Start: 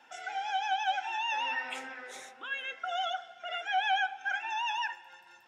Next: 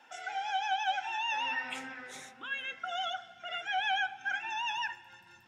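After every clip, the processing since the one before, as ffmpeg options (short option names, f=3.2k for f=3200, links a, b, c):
-af "asubboost=boost=10.5:cutoff=180"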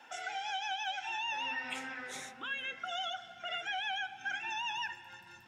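-filter_complex "[0:a]acrossover=split=530|2100[a][b][c];[a]acompressor=threshold=-52dB:ratio=4[d];[b]acompressor=threshold=-45dB:ratio=4[e];[c]acompressor=threshold=-42dB:ratio=4[f];[d][e][f]amix=inputs=3:normalize=0,volume=3dB"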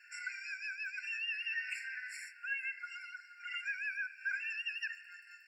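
-af "afftfilt=real='re*eq(mod(floor(b*sr/1024/1400),2),1)':imag='im*eq(mod(floor(b*sr/1024/1400),2),1)':win_size=1024:overlap=0.75,volume=1dB"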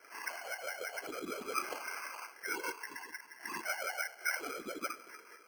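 -af "lowpass=f=2.6k:t=q:w=0.5098,lowpass=f=2.6k:t=q:w=0.6013,lowpass=f=2.6k:t=q:w=0.9,lowpass=f=2.6k:t=q:w=2.563,afreqshift=-3100,afftfilt=real='hypot(re,im)*cos(2*PI*random(0))':imag='hypot(re,im)*sin(2*PI*random(1))':win_size=512:overlap=0.75,acrusher=samples=12:mix=1:aa=0.000001,volume=7.5dB"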